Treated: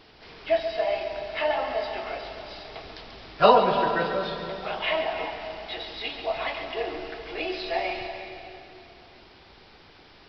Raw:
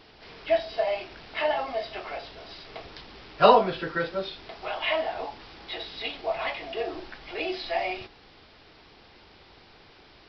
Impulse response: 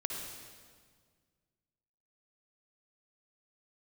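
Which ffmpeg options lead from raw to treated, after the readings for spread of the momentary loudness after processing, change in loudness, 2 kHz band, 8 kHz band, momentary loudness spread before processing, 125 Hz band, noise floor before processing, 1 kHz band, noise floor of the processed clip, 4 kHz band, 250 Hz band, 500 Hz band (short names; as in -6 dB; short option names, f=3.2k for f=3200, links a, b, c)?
19 LU, +1.0 dB, +1.5 dB, n/a, 20 LU, +1.5 dB, -54 dBFS, +1.5 dB, -53 dBFS, +1.0 dB, +1.5 dB, +1.0 dB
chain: -filter_complex "[0:a]asplit=2[a][b];[1:a]atrim=start_sample=2205,asetrate=26901,aresample=44100,adelay=138[c];[b][c]afir=irnorm=-1:irlink=0,volume=-10.5dB[d];[a][d]amix=inputs=2:normalize=0"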